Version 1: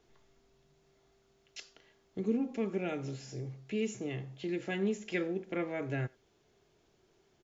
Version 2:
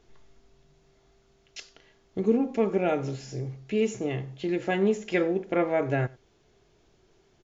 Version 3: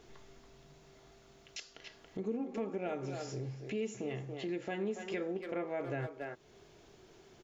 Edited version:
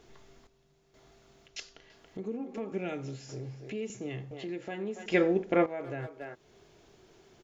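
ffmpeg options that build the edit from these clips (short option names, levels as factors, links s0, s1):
-filter_complex "[0:a]asplit=3[s0][s1][s2];[1:a]asplit=2[s3][s4];[2:a]asplit=6[s5][s6][s7][s8][s9][s10];[s5]atrim=end=0.472[s11];[s0]atrim=start=0.468:end=0.942[s12];[s6]atrim=start=0.938:end=1.482[s13];[s3]atrim=start=1.478:end=1.902[s14];[s7]atrim=start=1.898:end=2.722[s15];[s1]atrim=start=2.718:end=3.292[s16];[s8]atrim=start=3.288:end=3.902[s17];[s2]atrim=start=3.898:end=4.312[s18];[s9]atrim=start=4.308:end=5.062[s19];[s4]atrim=start=5.058:end=5.662[s20];[s10]atrim=start=5.658[s21];[s11][s12]acrossfade=d=0.004:c1=hsin:c2=hsin[s22];[s22][s13]acrossfade=d=0.004:c1=hsin:c2=hsin[s23];[s23][s14]acrossfade=d=0.004:c1=hsin:c2=hsin[s24];[s24][s15]acrossfade=d=0.004:c1=hsin:c2=hsin[s25];[s25][s16]acrossfade=d=0.004:c1=hsin:c2=hsin[s26];[s26][s17]acrossfade=d=0.004:c1=hsin:c2=hsin[s27];[s27][s18]acrossfade=d=0.004:c1=hsin:c2=hsin[s28];[s28][s19]acrossfade=d=0.004:c1=hsin:c2=hsin[s29];[s29][s20]acrossfade=d=0.004:c1=hsin:c2=hsin[s30];[s30][s21]acrossfade=d=0.004:c1=hsin:c2=hsin"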